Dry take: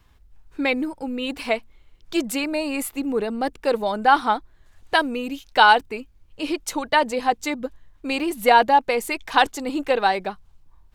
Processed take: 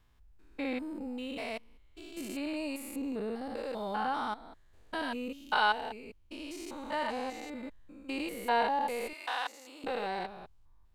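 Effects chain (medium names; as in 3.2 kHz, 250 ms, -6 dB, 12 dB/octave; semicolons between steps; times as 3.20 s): spectrogram pixelated in time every 200 ms; 9.13–9.84 s: high-pass 710 Hz 12 dB/octave; trim -8.5 dB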